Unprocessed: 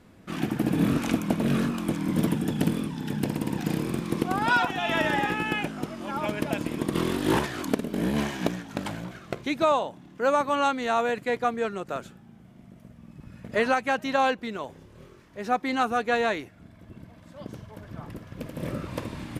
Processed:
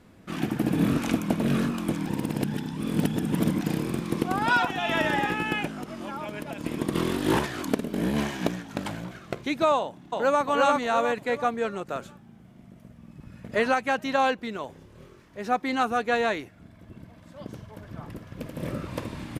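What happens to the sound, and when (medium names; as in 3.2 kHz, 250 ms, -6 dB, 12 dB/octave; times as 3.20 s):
2.06–3.61 s: reverse
5.66–6.64 s: compression 10:1, threshold -30 dBFS
9.77–10.44 s: echo throw 350 ms, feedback 40%, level -1 dB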